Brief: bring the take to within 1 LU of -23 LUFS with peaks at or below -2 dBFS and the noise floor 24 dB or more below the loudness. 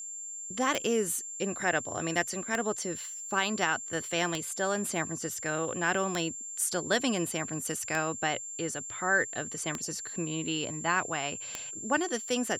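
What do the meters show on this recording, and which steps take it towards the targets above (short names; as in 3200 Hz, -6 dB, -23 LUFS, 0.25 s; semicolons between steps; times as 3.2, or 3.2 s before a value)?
clicks 7; steady tone 7300 Hz; tone level -38 dBFS; loudness -31.0 LUFS; peak -13.5 dBFS; loudness target -23.0 LUFS
-> de-click; notch 7300 Hz, Q 30; gain +8 dB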